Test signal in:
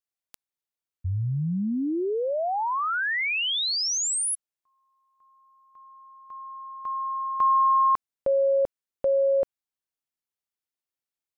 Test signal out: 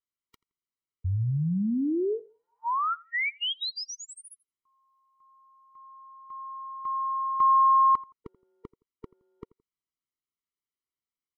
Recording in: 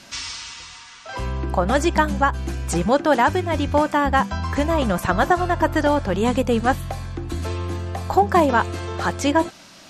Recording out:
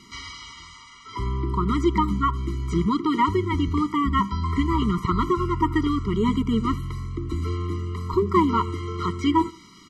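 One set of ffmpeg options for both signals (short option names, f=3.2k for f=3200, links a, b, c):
-filter_complex "[0:a]highshelf=f=6.1k:g=-8.5,asplit=2[a][b];[b]adelay=84,lowpass=f=1.7k:p=1,volume=-20.5dB,asplit=2[c][d];[d]adelay=84,lowpass=f=1.7k:p=1,volume=0.31[e];[a][c][e]amix=inputs=3:normalize=0,acrossover=split=5100[f][g];[g]acompressor=threshold=-50dB:ratio=4:attack=1:release=60[h];[f][h]amix=inputs=2:normalize=0,afftfilt=real='re*eq(mod(floor(b*sr/1024/470),2),0)':imag='im*eq(mod(floor(b*sr/1024/470),2),0)':win_size=1024:overlap=0.75"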